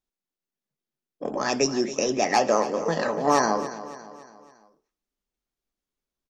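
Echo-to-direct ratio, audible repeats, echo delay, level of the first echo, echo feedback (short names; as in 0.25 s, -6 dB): -13.0 dB, 4, 0.28 s, -14.0 dB, 47%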